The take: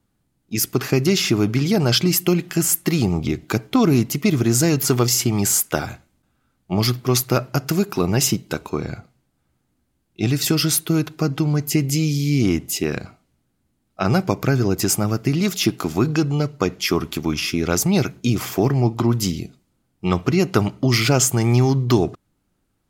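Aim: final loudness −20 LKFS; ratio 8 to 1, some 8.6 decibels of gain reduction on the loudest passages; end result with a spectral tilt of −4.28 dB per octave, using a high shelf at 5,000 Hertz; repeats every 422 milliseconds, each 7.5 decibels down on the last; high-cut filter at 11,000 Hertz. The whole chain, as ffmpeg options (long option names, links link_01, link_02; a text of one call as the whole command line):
ffmpeg -i in.wav -af "lowpass=11000,highshelf=frequency=5000:gain=4.5,acompressor=threshold=-21dB:ratio=8,aecho=1:1:422|844|1266|1688|2110:0.422|0.177|0.0744|0.0312|0.0131,volume=5.5dB" out.wav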